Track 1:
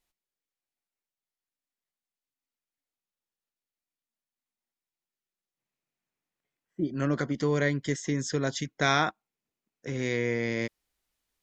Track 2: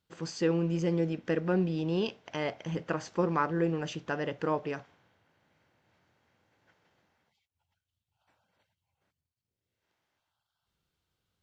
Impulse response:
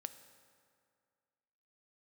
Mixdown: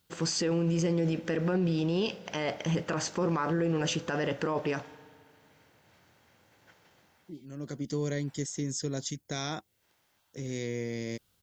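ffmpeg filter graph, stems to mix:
-filter_complex "[0:a]equalizer=frequency=1500:width_type=o:width=2.2:gain=-11.5,adelay=500,volume=-10.5dB,afade=type=in:start_time=7.55:duration=0.3:silence=0.298538[link_01];[1:a]volume=-3dB,asplit=2[link_02][link_03];[link_03]volume=-5dB[link_04];[2:a]atrim=start_sample=2205[link_05];[link_04][link_05]afir=irnorm=-1:irlink=0[link_06];[link_01][link_02][link_06]amix=inputs=3:normalize=0,acontrast=88,crystalizer=i=1.5:c=0,alimiter=limit=-21dB:level=0:latency=1:release=19"

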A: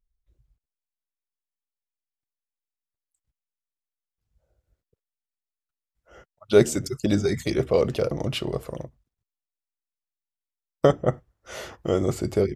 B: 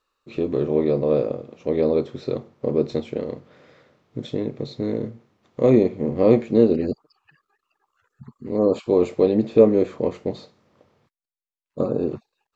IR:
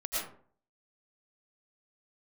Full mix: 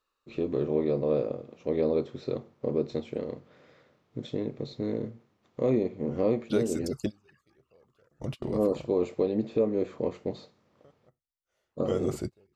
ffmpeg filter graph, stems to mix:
-filter_complex "[0:a]volume=-5.5dB[link_01];[1:a]volume=-6dB,asplit=2[link_02][link_03];[link_03]apad=whole_len=553548[link_04];[link_01][link_04]sidechaingate=range=-36dB:threshold=-49dB:ratio=16:detection=peak[link_05];[link_05][link_02]amix=inputs=2:normalize=0,alimiter=limit=-15.5dB:level=0:latency=1:release=397"

